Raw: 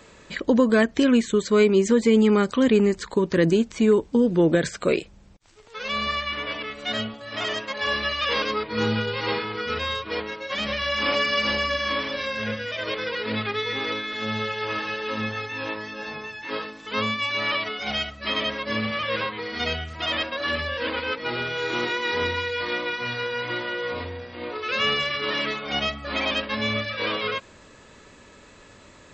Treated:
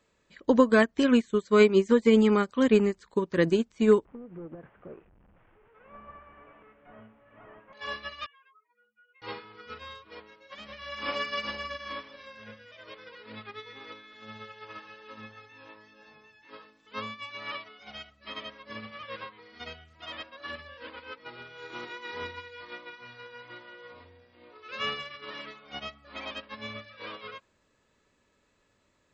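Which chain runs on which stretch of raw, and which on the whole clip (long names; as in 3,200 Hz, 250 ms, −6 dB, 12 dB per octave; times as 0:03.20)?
0:04.05–0:07.73: linear delta modulator 16 kbit/s, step −32.5 dBFS + low-pass filter 1,600 Hz + downward compressor 10 to 1, threshold −22 dBFS
0:08.26–0:09.22: expanding power law on the bin magnitudes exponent 3.3 + flat-topped band-pass 1,900 Hz, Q 1.4 + downward compressor 12 to 1, threshold −36 dBFS
whole clip: dynamic equaliser 1,100 Hz, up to +4 dB, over −37 dBFS, Q 1.3; expander for the loud parts 2.5 to 1, over −28 dBFS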